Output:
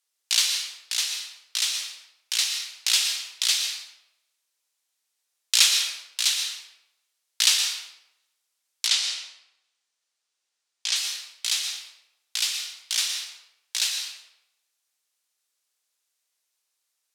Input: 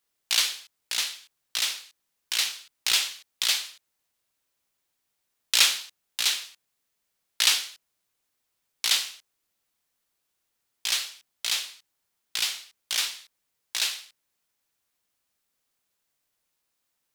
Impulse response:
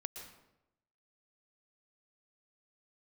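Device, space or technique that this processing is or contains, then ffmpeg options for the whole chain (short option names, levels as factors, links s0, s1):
supermarket ceiling speaker: -filter_complex "[0:a]highpass=290,lowpass=6900[s0];[1:a]atrim=start_sample=2205[s1];[s0][s1]afir=irnorm=-1:irlink=0,aemphasis=mode=production:type=riaa,asettb=1/sr,asplit=3[s2][s3][s4];[s2]atrim=end=8.874[s5];[s3]atrim=start=8.87:end=10.96,asetpts=PTS-STARTPTS,afade=t=in:d=0.004:c=qsin,afade=t=out:st=2.086:d=0.004:c=qsin,lowpass=7300[s6];[s4]atrim=start=10.956[s7];[s5][s6]acrossfade=d=0.004:c1=hsin:c2=qsin[s8];[s8][s7]acrossfade=d=0.004:c1=qsin:c2=hsin,volume=0.841"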